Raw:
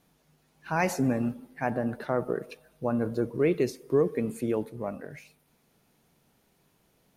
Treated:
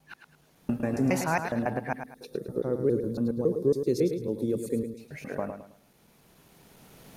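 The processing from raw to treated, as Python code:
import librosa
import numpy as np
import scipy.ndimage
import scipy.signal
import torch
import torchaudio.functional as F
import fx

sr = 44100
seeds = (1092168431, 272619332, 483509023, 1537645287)

p1 = fx.block_reorder(x, sr, ms=138.0, group=5)
p2 = fx.recorder_agc(p1, sr, target_db=-19.5, rise_db_per_s=9.4, max_gain_db=30)
p3 = fx.spec_box(p2, sr, start_s=2.01, length_s=2.99, low_hz=580.0, high_hz=3300.0, gain_db=-13)
y = p3 + fx.echo_feedback(p3, sr, ms=107, feedback_pct=31, wet_db=-8.0, dry=0)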